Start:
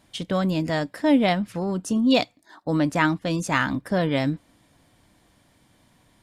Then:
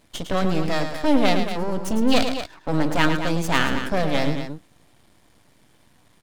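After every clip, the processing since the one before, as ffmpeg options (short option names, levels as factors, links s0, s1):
-af "aeval=exprs='max(val(0),0)':c=same,aecho=1:1:107.9|227.4:0.398|0.316,volume=1.68"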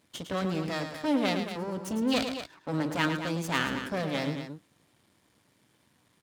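-af "highpass=93,equalizer=f=710:w=3:g=-4,volume=0.447"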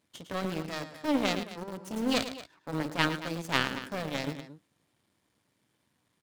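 -filter_complex "[0:a]aeval=exprs='0.335*(cos(1*acos(clip(val(0)/0.335,-1,1)))-cos(1*PI/2))+0.0335*(cos(3*acos(clip(val(0)/0.335,-1,1)))-cos(3*PI/2))+0.0133*(cos(7*acos(clip(val(0)/0.335,-1,1)))-cos(7*PI/2))':c=same,asplit=2[s0][s1];[s1]aeval=exprs='val(0)*gte(abs(val(0)),0.0224)':c=same,volume=0.562[s2];[s0][s2]amix=inputs=2:normalize=0"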